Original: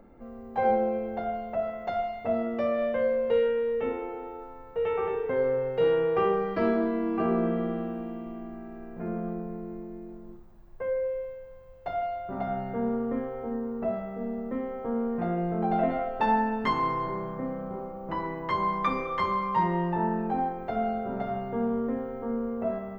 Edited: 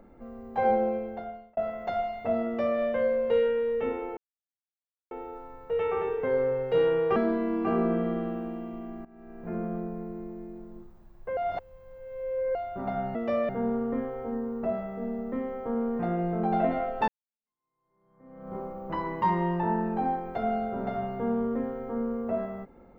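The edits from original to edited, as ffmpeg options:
ffmpeg -i in.wav -filter_complex "[0:a]asplit=11[link_01][link_02][link_03][link_04][link_05][link_06][link_07][link_08][link_09][link_10][link_11];[link_01]atrim=end=1.57,asetpts=PTS-STARTPTS,afade=type=out:start_time=0.89:duration=0.68[link_12];[link_02]atrim=start=1.57:end=4.17,asetpts=PTS-STARTPTS,afade=type=in:duration=0.004:curve=hsin,afade=type=out:start_time=2.596:duration=0.004:curve=hsin,apad=pad_dur=0.94[link_13];[link_03]atrim=start=4.17:end=6.222,asetpts=PTS-STARTPTS,afade=type=in:duration=0.004:curve=hsin[link_14];[link_04]atrim=start=6.688:end=8.58,asetpts=PTS-STARTPTS,afade=type=out:start_time=1.888:duration=0.004:curve=hsin:silence=0.141254[link_15];[link_05]atrim=start=8.58:end=10.902,asetpts=PTS-STARTPTS,afade=type=in:duration=0.43:silence=0.141254[link_16];[link_06]atrim=start=10.898:end=12.082,asetpts=PTS-STARTPTS,areverse[link_17];[link_07]atrim=start=12.078:end=12.682[link_18];[link_08]atrim=start=2.458:end=2.802[link_19];[link_09]atrim=start=12.678:end=16.27,asetpts=PTS-STARTPTS,afade=type=out:start_time=3.588:duration=0.004:curve=hsin[link_20];[link_10]atrim=start=16.27:end=18.412,asetpts=PTS-STARTPTS,afade=type=in:duration=1.47:curve=exp[link_21];[link_11]atrim=start=19.548[link_22];[link_12][link_13][link_14]concat=n=3:v=0:a=1[link_23];[link_15][link_16]concat=n=2:v=0:a=1[link_24];[link_23][link_24]acrossfade=duration=0.004:curve1=hsin:curve2=hsin[link_25];[link_25][link_17]acrossfade=duration=0.004:curve1=hsin:curve2=hsin[link_26];[link_26][link_18]acrossfade=duration=0.004:curve1=hsin:curve2=hsin[link_27];[link_27][link_19]acrossfade=duration=0.004:curve1=hsin:curve2=hsin[link_28];[link_20][link_21]concat=n=2:v=0:a=1[link_29];[link_28][link_29]acrossfade=duration=0.004:curve1=hsin:curve2=hsin[link_30];[link_30][link_22]acrossfade=duration=0.004:curve1=hsin:curve2=hsin" out.wav

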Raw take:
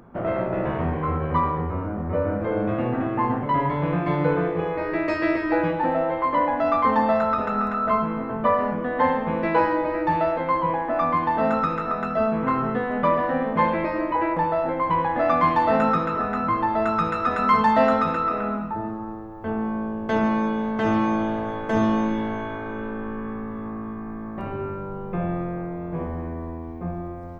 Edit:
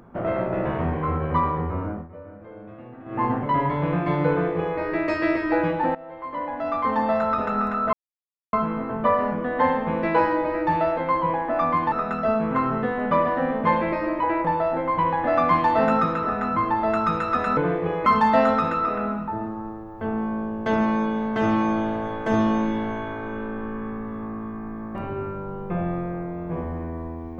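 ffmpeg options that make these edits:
ffmpeg -i in.wav -filter_complex "[0:a]asplit=8[link_01][link_02][link_03][link_04][link_05][link_06][link_07][link_08];[link_01]atrim=end=2.08,asetpts=PTS-STARTPTS,afade=type=out:start_time=1.9:duration=0.18:silence=0.133352[link_09];[link_02]atrim=start=2.08:end=3.05,asetpts=PTS-STARTPTS,volume=-17.5dB[link_10];[link_03]atrim=start=3.05:end=5.95,asetpts=PTS-STARTPTS,afade=type=in:duration=0.18:silence=0.133352,afade=type=out:start_time=2.896:duration=0.004:curve=hsin:silence=0.0944061[link_11];[link_04]atrim=start=5.95:end=7.93,asetpts=PTS-STARTPTS,afade=type=in:duration=1.48:silence=0.0944061,afade=type=out:start_time=1.976:duration=0.004:curve=hsin,apad=pad_dur=0.6[link_12];[link_05]atrim=start=7.93:end=11.322,asetpts=PTS-STARTPTS,afade=type=in:duration=0.004:curve=hsin[link_13];[link_06]atrim=start=11.838:end=17.492[link_14];[link_07]atrim=start=4.298:end=4.792[link_15];[link_08]atrim=start=17.488[link_16];[link_09][link_10][link_11][link_12][link_13]concat=n=5:v=0:a=1[link_17];[link_17][link_14]acrossfade=duration=0.004:curve1=hsin:curve2=hsin[link_18];[link_18][link_15]acrossfade=duration=0.004:curve1=hsin:curve2=hsin[link_19];[link_19][link_16]acrossfade=duration=0.004:curve1=hsin:curve2=hsin" out.wav

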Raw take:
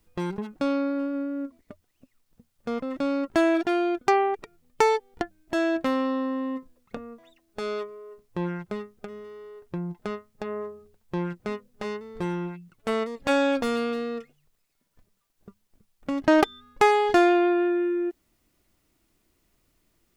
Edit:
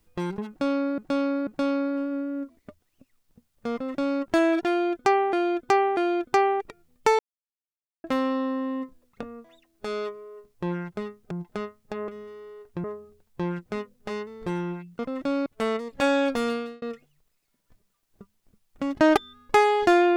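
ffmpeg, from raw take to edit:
ffmpeg -i in.wav -filter_complex "[0:a]asplit=13[link_01][link_02][link_03][link_04][link_05][link_06][link_07][link_08][link_09][link_10][link_11][link_12][link_13];[link_01]atrim=end=0.982[link_14];[link_02]atrim=start=0.488:end=0.982[link_15];[link_03]atrim=start=0.488:end=4.352[link_16];[link_04]atrim=start=3.708:end=4.352[link_17];[link_05]atrim=start=3.708:end=4.93,asetpts=PTS-STARTPTS,afade=type=out:start_time=1.218:duration=0.004:curve=hsin[link_18];[link_06]atrim=start=4.93:end=5.78,asetpts=PTS-STARTPTS,volume=0[link_19];[link_07]atrim=start=5.78:end=9.052,asetpts=PTS-STARTPTS,afade=type=in:duration=0.004:curve=hsin[link_20];[link_08]atrim=start=9.808:end=10.582[link_21];[link_09]atrim=start=9.048:end=9.812[link_22];[link_10]atrim=start=10.578:end=12.732[link_23];[link_11]atrim=start=2.738:end=3.212[link_24];[link_12]atrim=start=12.728:end=14.09,asetpts=PTS-STARTPTS,afade=type=out:start_time=1.042:duration=0.32[link_25];[link_13]atrim=start=14.09,asetpts=PTS-STARTPTS,afade=type=in:duration=0.004:curve=hsin[link_26];[link_14][link_15]acrossfade=duration=0.004:curve1=hsin:curve2=hsin[link_27];[link_27][link_16]acrossfade=duration=0.004:curve1=hsin:curve2=hsin[link_28];[link_28][link_17]acrossfade=duration=0.004:curve1=hsin:curve2=hsin[link_29];[link_18][link_19][link_20]concat=n=3:v=0:a=1[link_30];[link_29][link_30]acrossfade=duration=0.004:curve1=hsin:curve2=hsin[link_31];[link_31][link_21]acrossfade=duration=0.004:curve1=hsin:curve2=hsin[link_32];[link_32][link_22]acrossfade=duration=0.004:curve1=hsin:curve2=hsin[link_33];[link_33][link_23]acrossfade=duration=0.004:curve1=hsin:curve2=hsin[link_34];[link_34][link_24]acrossfade=duration=0.004:curve1=hsin:curve2=hsin[link_35];[link_25][link_26]concat=n=2:v=0:a=1[link_36];[link_35][link_36]acrossfade=duration=0.004:curve1=hsin:curve2=hsin" out.wav

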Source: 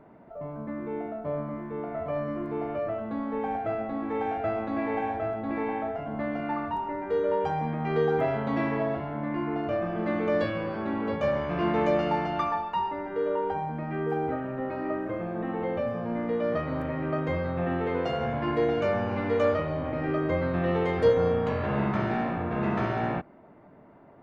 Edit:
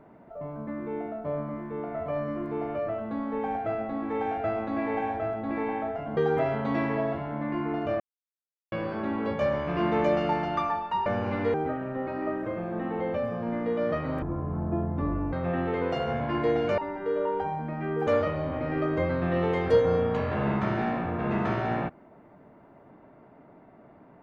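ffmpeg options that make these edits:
ffmpeg -i in.wav -filter_complex "[0:a]asplit=10[link_01][link_02][link_03][link_04][link_05][link_06][link_07][link_08][link_09][link_10];[link_01]atrim=end=6.172[link_11];[link_02]atrim=start=7.988:end=9.82,asetpts=PTS-STARTPTS,afade=type=out:start_time=1.828:duration=0.004:curve=hsin[link_12];[link_03]atrim=start=9.82:end=10.54,asetpts=PTS-STARTPTS,volume=0[link_13];[link_04]atrim=start=10.54:end=12.882,asetpts=PTS-STARTPTS,afade=type=in:duration=0.004:curve=hsin[link_14];[link_05]atrim=start=18.908:end=19.392[link_15];[link_06]atrim=start=14.168:end=16.854[link_16];[link_07]atrim=start=16.85:end=17.46,asetpts=PTS-STARTPTS,asetrate=24255,aresample=44100[link_17];[link_08]atrim=start=17.456:end=18.912[link_18];[link_09]atrim=start=12.878:end=14.172[link_19];[link_10]atrim=start=19.388[link_20];[link_12][link_13][link_14]concat=n=3:v=0:a=1[link_21];[link_11][link_21]acrossfade=duration=0.004:curve1=hsin:curve2=hsin[link_22];[link_22][link_15]acrossfade=duration=0.004:curve1=hsin:curve2=hsin[link_23];[link_23][link_16]acrossfade=duration=0.004:curve1=hsin:curve2=hsin[link_24];[link_24][link_17]acrossfade=duration=0.004:curve1=hsin:curve2=hsin[link_25];[link_25][link_18]acrossfade=duration=0.004:curve1=hsin:curve2=hsin[link_26];[link_26][link_19]acrossfade=duration=0.004:curve1=hsin:curve2=hsin[link_27];[link_27][link_20]acrossfade=duration=0.004:curve1=hsin:curve2=hsin" out.wav

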